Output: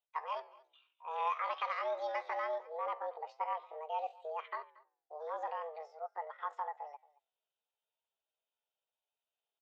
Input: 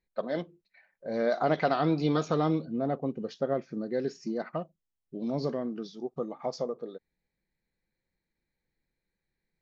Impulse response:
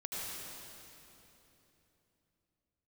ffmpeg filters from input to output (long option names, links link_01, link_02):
-filter_complex "[0:a]alimiter=limit=-18dB:level=0:latency=1:release=464,highpass=frequency=260:width_type=q:width=0.5412,highpass=frequency=260:width_type=q:width=1.307,lowpass=frequency=2900:width_type=q:width=0.5176,lowpass=frequency=2900:width_type=q:width=0.7071,lowpass=frequency=2900:width_type=q:width=1.932,afreqshift=91,flanger=delay=6.4:depth=7.1:regen=-88:speed=0.47:shape=triangular,asplit=2[link_01][link_02];[link_02]aecho=0:1:223:0.0794[link_03];[link_01][link_03]amix=inputs=2:normalize=0,asetrate=66075,aresample=44100,atempo=0.66742,volume=-2dB"